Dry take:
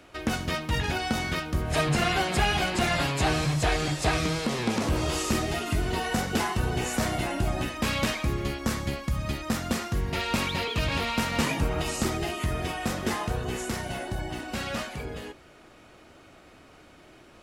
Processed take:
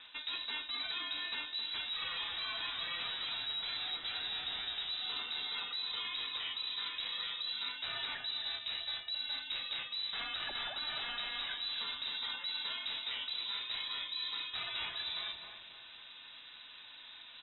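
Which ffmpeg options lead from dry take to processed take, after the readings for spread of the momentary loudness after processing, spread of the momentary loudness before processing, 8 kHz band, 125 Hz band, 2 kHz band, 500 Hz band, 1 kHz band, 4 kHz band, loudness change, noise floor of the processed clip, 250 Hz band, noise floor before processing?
9 LU, 7 LU, below −40 dB, below −35 dB, −10.5 dB, −26.0 dB, −17.0 dB, −0.5 dB, −8.5 dB, −53 dBFS, −32.5 dB, −53 dBFS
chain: -filter_complex "[0:a]lowpass=frequency=3400:width_type=q:width=0.5098,lowpass=frequency=3400:width_type=q:width=0.6013,lowpass=frequency=3400:width_type=q:width=0.9,lowpass=frequency=3400:width_type=q:width=2.563,afreqshift=-4000,alimiter=limit=-18dB:level=0:latency=1:release=115,lowshelf=frequency=78:gain=9.5,asplit=2[link_01][link_02];[link_02]adelay=266,lowpass=frequency=1100:poles=1,volume=-5dB,asplit=2[link_03][link_04];[link_04]adelay=266,lowpass=frequency=1100:poles=1,volume=0.44,asplit=2[link_05][link_06];[link_06]adelay=266,lowpass=frequency=1100:poles=1,volume=0.44,asplit=2[link_07][link_08];[link_08]adelay=266,lowpass=frequency=1100:poles=1,volume=0.44,asplit=2[link_09][link_10];[link_10]adelay=266,lowpass=frequency=1100:poles=1,volume=0.44[link_11];[link_01][link_03][link_05][link_07][link_09][link_11]amix=inputs=6:normalize=0,areverse,acompressor=threshold=-36dB:ratio=12,areverse"

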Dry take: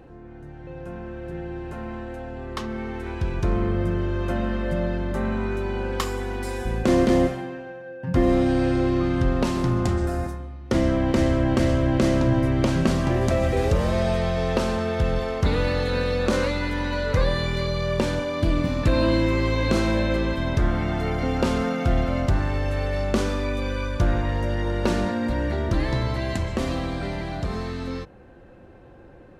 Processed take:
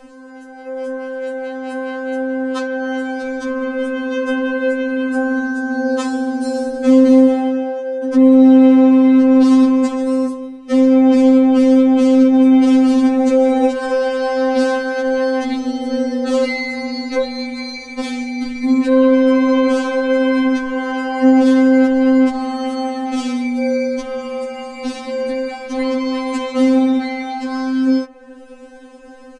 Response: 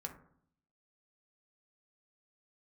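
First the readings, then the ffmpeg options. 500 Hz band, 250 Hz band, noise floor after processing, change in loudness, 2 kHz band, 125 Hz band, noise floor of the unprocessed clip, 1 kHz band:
+8.5 dB, +12.5 dB, −37 dBFS, +9.0 dB, +6.5 dB, below −20 dB, −43 dBFS, +6.0 dB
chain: -filter_complex "[0:a]equalizer=frequency=220:width_type=o:width=0.99:gain=5,acrossover=split=250|620|5000[link_01][link_02][link_03][link_04];[link_04]acompressor=mode=upward:threshold=-49dB:ratio=2.5[link_05];[link_01][link_02][link_03][link_05]amix=inputs=4:normalize=0,aresample=22050,aresample=44100,alimiter=level_in=14dB:limit=-1dB:release=50:level=0:latency=1,afftfilt=real='re*3.46*eq(mod(b,12),0)':imag='im*3.46*eq(mod(b,12),0)':win_size=2048:overlap=0.75,volume=-5.5dB"

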